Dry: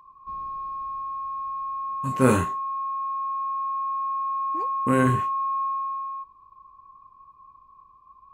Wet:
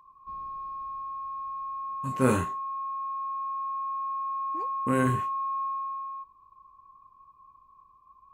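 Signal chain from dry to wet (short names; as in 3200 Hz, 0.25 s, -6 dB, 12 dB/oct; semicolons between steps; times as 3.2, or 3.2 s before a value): 4.95–5.85 high shelf 8600 Hz +5 dB; gain -4.5 dB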